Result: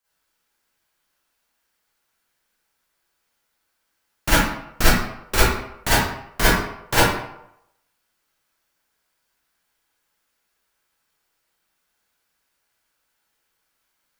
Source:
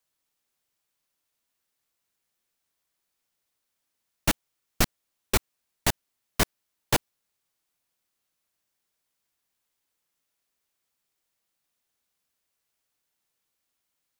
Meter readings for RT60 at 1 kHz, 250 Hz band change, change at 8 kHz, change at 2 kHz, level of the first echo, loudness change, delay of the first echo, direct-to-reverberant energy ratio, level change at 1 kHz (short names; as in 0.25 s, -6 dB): 0.80 s, +8.5 dB, +5.5 dB, +12.5 dB, none, +8.0 dB, none, -11.5 dB, +11.5 dB